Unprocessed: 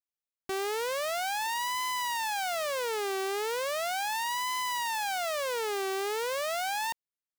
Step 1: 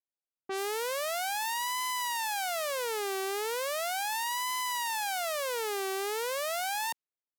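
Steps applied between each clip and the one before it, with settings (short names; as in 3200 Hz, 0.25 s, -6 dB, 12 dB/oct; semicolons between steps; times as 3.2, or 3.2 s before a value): HPF 210 Hz 12 dB/oct; low-pass opened by the level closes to 790 Hz, open at -28 dBFS; high shelf 9100 Hz +8 dB; gain -1.5 dB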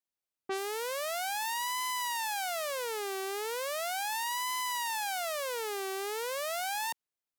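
limiter -24 dBFS, peak gain reduction 4.5 dB; gain +1.5 dB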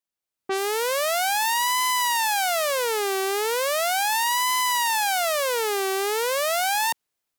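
AGC gain up to 9.5 dB; gain +1.5 dB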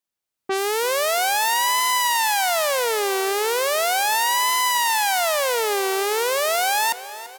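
feedback echo 0.34 s, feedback 54%, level -16 dB; on a send at -23 dB: reverb RT60 2.8 s, pre-delay 5 ms; on the sum: gain +2.5 dB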